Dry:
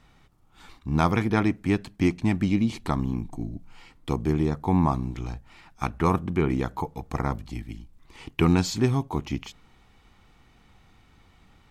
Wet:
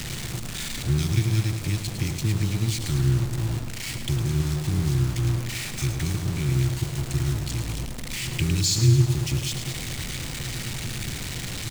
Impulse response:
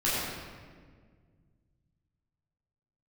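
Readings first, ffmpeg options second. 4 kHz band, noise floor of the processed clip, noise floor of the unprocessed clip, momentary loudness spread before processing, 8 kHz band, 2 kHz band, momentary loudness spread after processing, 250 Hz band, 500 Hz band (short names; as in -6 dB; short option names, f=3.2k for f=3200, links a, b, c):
+10.5 dB, -33 dBFS, -58 dBFS, 15 LU, +14.0 dB, +1.5 dB, 9 LU, -5.0 dB, -6.5 dB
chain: -filter_complex "[0:a]aeval=exprs='val(0)+0.5*0.0376*sgn(val(0))':c=same,equalizer=f=130:w=3:g=8.5,acrossover=split=130|3000[a][b][c];[b]acompressor=threshold=-34dB:ratio=6[d];[a][d][c]amix=inputs=3:normalize=0,equalizer=f=125:t=o:w=1:g=7,equalizer=f=500:t=o:w=1:g=-11,equalizer=f=1k:t=o:w=1:g=-11,equalizer=f=2k:t=o:w=1:g=6,equalizer=f=4k:t=o:w=1:g=5,equalizer=f=8k:t=o:w=1:g=9,asplit=2[e][f];[f]aeval=exprs='(mod(31.6*val(0)+1,2)-1)/31.6':c=same,volume=-5dB[g];[e][g]amix=inputs=2:normalize=0,aecho=1:1:107|214|321|428|535|642:0.376|0.203|0.11|0.0592|0.032|0.0173,tremolo=f=220:d=0.571"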